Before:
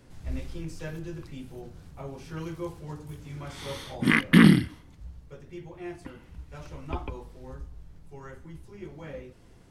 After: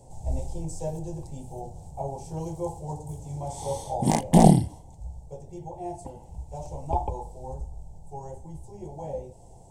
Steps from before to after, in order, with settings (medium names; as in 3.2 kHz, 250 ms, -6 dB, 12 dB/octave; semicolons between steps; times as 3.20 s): one-sided wavefolder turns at -11.5 dBFS; FFT filter 140 Hz 0 dB, 280 Hz -9 dB, 850 Hz +11 dB, 1.3 kHz -29 dB, 4.7 kHz -9 dB, 8 kHz +9 dB, 11 kHz -5 dB; trim +5 dB